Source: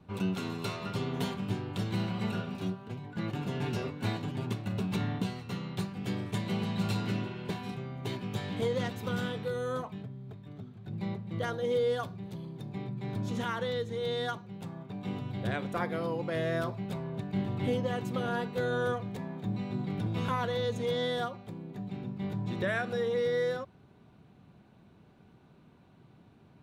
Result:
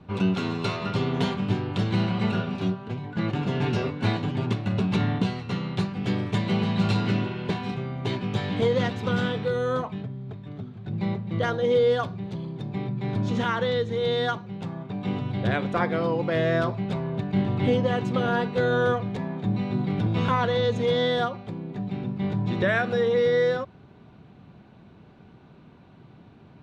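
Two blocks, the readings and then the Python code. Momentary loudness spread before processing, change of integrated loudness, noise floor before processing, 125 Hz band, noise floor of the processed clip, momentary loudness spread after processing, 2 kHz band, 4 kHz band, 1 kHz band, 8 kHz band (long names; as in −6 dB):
9 LU, +8.0 dB, −59 dBFS, +8.0 dB, −51 dBFS, 9 LU, +8.0 dB, +7.0 dB, +8.0 dB, can't be measured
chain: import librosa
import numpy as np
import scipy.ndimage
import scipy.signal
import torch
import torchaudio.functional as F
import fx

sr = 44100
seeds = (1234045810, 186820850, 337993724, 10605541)

y = scipy.signal.sosfilt(scipy.signal.butter(2, 5000.0, 'lowpass', fs=sr, output='sos'), x)
y = F.gain(torch.from_numpy(y), 8.0).numpy()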